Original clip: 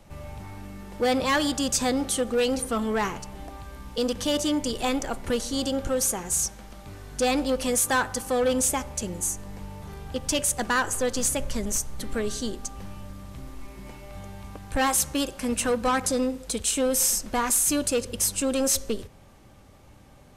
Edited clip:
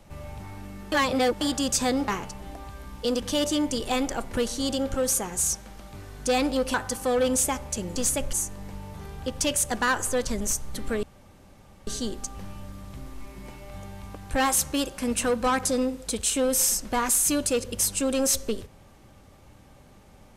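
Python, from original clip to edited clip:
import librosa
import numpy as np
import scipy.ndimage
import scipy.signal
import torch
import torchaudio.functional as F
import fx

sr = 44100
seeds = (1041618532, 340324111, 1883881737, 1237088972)

y = fx.edit(x, sr, fx.reverse_span(start_s=0.92, length_s=0.49),
    fx.cut(start_s=2.08, length_s=0.93),
    fx.cut(start_s=7.67, length_s=0.32),
    fx.move(start_s=11.15, length_s=0.37, to_s=9.21),
    fx.insert_room_tone(at_s=12.28, length_s=0.84), tone=tone)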